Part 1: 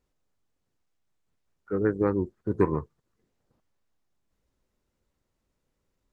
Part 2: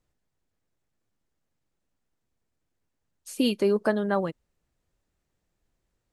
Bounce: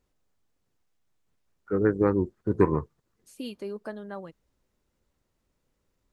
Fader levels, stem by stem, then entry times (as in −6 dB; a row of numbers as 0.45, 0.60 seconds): +2.0, −13.0 decibels; 0.00, 0.00 seconds